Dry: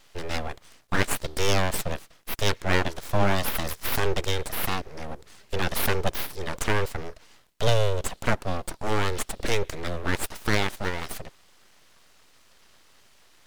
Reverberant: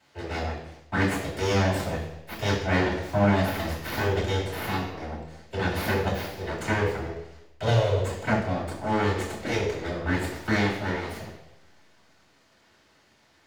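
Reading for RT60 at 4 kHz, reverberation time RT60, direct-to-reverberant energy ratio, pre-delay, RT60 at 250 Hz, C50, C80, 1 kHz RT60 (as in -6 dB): 0.90 s, 0.90 s, -8.0 dB, 3 ms, 0.85 s, 4.5 dB, 7.0 dB, 0.90 s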